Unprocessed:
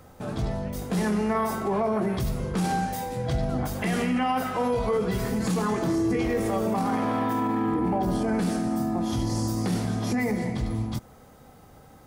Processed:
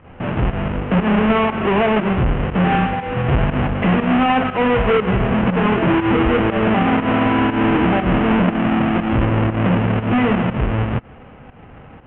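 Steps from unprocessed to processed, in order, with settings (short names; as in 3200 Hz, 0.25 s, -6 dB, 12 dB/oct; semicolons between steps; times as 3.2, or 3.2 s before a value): half-waves squared off; elliptic low-pass 2900 Hz, stop band 40 dB; pump 120 bpm, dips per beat 1, -11 dB, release 0.144 s; gain +6.5 dB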